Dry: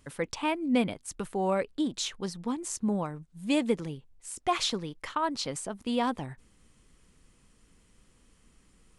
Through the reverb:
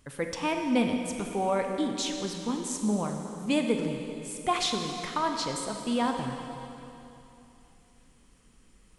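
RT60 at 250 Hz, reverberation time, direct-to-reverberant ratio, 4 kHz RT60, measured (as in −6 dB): 3.0 s, 3.0 s, 3.5 dB, 2.8 s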